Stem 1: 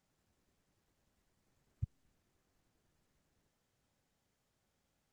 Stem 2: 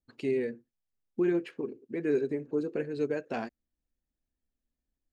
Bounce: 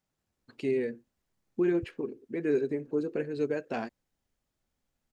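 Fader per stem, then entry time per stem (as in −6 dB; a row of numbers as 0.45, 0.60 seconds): −4.0, +0.5 decibels; 0.00, 0.40 seconds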